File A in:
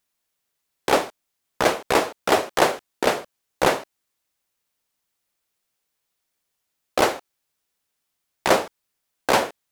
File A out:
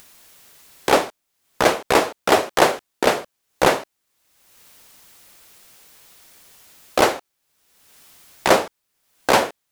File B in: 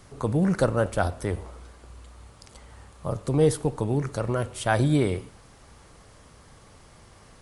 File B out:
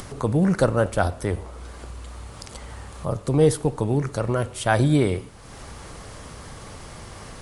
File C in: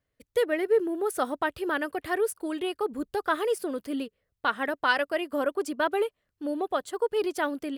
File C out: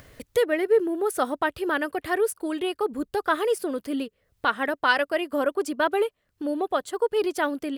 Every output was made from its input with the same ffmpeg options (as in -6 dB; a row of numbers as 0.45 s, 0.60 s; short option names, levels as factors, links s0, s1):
-af "acompressor=mode=upward:threshold=0.0251:ratio=2.5,volume=1.41"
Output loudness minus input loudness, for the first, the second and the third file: +3.0 LU, +3.0 LU, +3.0 LU